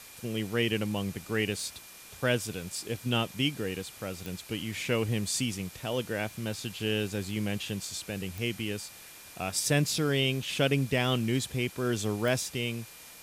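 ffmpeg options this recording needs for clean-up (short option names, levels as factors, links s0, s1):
-af "adeclick=t=4,bandreject=f=2400:w=30,afwtdn=0.004"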